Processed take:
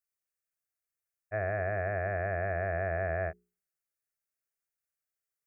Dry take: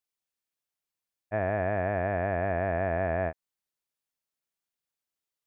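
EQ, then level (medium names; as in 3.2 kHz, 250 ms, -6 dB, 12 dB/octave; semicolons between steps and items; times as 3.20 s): peaking EQ 520 Hz -5 dB 0.57 oct; hum notches 60/120/180/240/300/360/420 Hz; static phaser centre 930 Hz, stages 6; 0.0 dB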